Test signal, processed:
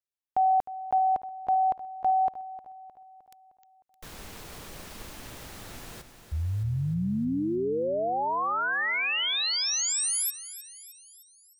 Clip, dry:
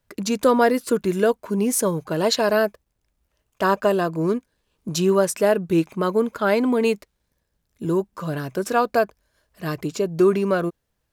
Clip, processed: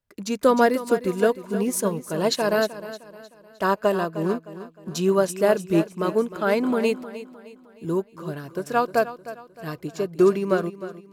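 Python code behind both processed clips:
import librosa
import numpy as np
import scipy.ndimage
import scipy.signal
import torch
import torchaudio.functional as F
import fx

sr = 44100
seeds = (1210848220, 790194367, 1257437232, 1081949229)

p1 = x + fx.echo_feedback(x, sr, ms=308, feedback_pct=53, wet_db=-10, dry=0)
y = fx.upward_expand(p1, sr, threshold_db=-35.0, expansion=1.5)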